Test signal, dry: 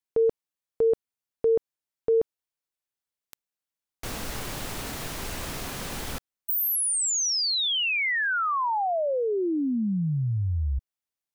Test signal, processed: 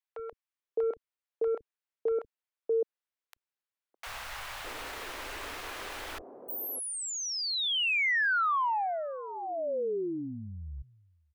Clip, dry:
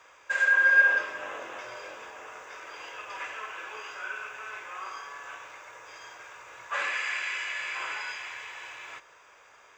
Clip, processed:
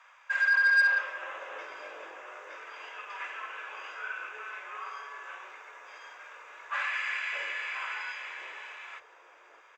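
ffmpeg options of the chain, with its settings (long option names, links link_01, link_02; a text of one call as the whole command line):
ffmpeg -i in.wav -filter_complex "[0:a]bass=frequency=250:gain=-12,treble=frequency=4000:gain=-11,asoftclip=type=tanh:threshold=-16.5dB,equalizer=frequency=170:width_type=o:width=0.97:gain=-13.5,acrossover=split=180|650[link_01][link_02][link_03];[link_01]adelay=30[link_04];[link_02]adelay=610[link_05];[link_04][link_05][link_03]amix=inputs=3:normalize=0" out.wav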